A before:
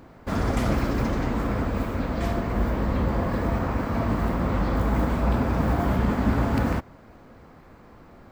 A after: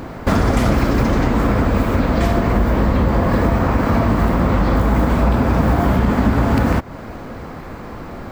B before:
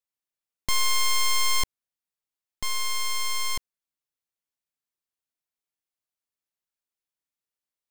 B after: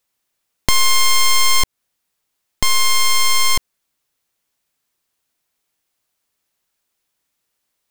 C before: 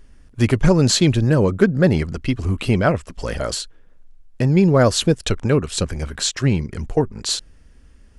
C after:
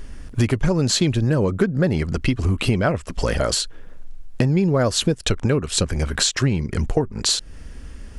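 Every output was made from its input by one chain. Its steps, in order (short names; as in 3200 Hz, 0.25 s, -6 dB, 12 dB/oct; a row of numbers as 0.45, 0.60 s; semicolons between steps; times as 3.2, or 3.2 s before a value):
compressor 4:1, threshold -31 dBFS; normalise peaks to -3 dBFS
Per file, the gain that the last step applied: +17.5, +17.5, +12.0 dB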